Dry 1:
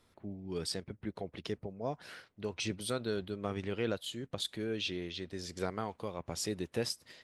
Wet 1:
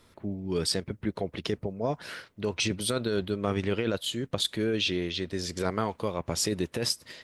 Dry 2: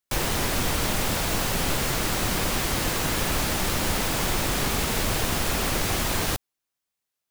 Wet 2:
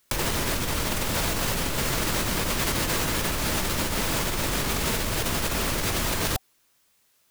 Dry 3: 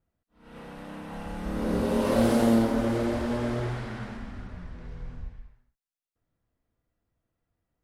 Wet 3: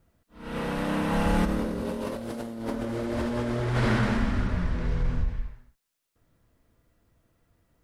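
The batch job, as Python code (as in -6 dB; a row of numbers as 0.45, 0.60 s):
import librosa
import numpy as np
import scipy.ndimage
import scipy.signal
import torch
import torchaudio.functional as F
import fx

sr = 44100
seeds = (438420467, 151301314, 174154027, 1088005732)

y = fx.notch(x, sr, hz=760.0, q=12.0)
y = fx.over_compress(y, sr, threshold_db=-35.0, ratio=-1.0)
y = librosa.util.normalize(y) * 10.0 ** (-12 / 20.0)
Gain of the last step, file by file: +8.5, +9.0, +7.5 dB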